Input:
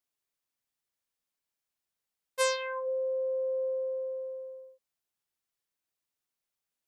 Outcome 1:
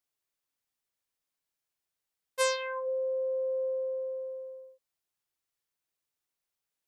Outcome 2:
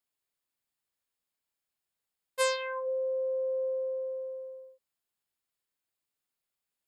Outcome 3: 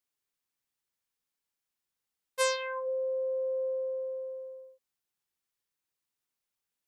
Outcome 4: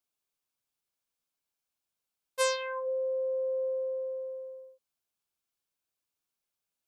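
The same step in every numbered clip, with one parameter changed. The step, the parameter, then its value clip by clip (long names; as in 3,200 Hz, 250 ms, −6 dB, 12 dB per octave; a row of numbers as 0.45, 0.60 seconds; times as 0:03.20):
notch filter, centre frequency: 220, 5,900, 640, 1,900 Hertz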